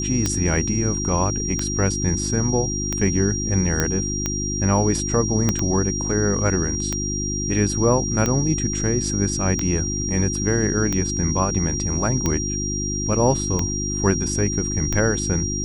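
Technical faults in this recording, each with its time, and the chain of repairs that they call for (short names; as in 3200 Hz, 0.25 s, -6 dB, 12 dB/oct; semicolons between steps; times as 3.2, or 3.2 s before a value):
hum 50 Hz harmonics 7 -27 dBFS
tick 45 rpm -8 dBFS
tone 5700 Hz -26 dBFS
3.8 pop -5 dBFS
5.49 pop -6 dBFS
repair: de-click; de-hum 50 Hz, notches 7; notch 5700 Hz, Q 30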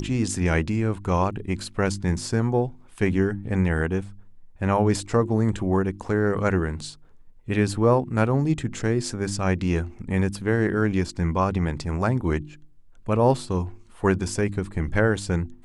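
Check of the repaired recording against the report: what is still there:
5.49 pop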